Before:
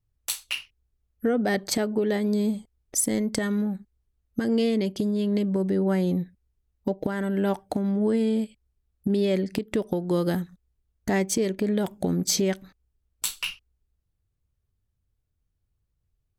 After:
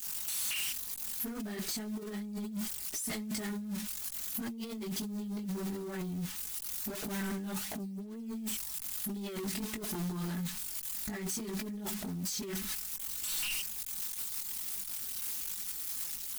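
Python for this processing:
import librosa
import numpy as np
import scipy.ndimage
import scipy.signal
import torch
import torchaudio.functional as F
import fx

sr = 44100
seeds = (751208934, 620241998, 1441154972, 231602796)

y = x + 0.5 * 10.0 ** (-23.5 / 20.0) * np.diff(np.sign(x), prepend=np.sign(x[:1]))
y = fx.chorus_voices(y, sr, voices=4, hz=1.4, base_ms=21, depth_ms=3.0, mix_pct=55)
y = y + 0.7 * np.pad(y, (int(4.7 * sr / 1000.0), 0))[:len(y)]
y = fx.over_compress(y, sr, threshold_db=-32.0, ratio=-1.0)
y = 10.0 ** (-32.0 / 20.0) * np.tanh(y / 10.0 ** (-32.0 / 20.0))
y = fx.peak_eq(y, sr, hz=530.0, db=-11.5, octaves=0.66)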